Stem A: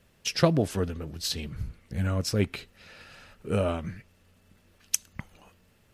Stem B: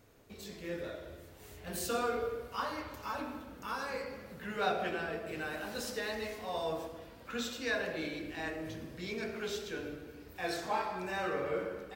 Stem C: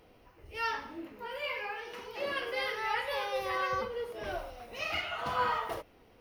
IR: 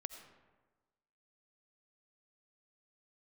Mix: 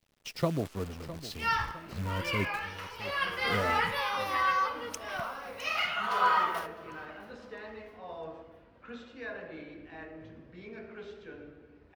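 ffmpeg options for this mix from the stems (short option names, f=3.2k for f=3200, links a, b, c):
-filter_complex "[0:a]aemphasis=mode=reproduction:type=50fm,bandreject=f=1.6k:w=5.5,acrusher=bits=7:dc=4:mix=0:aa=0.000001,volume=-8dB,asplit=2[a][b];[b]volume=-14.5dB[c];[1:a]lowpass=2.3k,adelay=1550,volume=-6dB[d];[2:a]highpass=810,adelay=850,volume=0.5dB,asplit=3[e][f][g];[f]volume=-5.5dB[h];[g]volume=-20dB[i];[3:a]atrim=start_sample=2205[j];[h][j]afir=irnorm=-1:irlink=0[k];[c][i]amix=inputs=2:normalize=0,aecho=0:1:658|1316|1974|2632|3290|3948:1|0.43|0.185|0.0795|0.0342|0.0147[l];[a][d][e][k][l]amix=inputs=5:normalize=0,adynamicequalizer=threshold=0.00631:dfrequency=1200:dqfactor=2:tfrequency=1200:tqfactor=2:attack=5:release=100:ratio=0.375:range=2.5:mode=boostabove:tftype=bell"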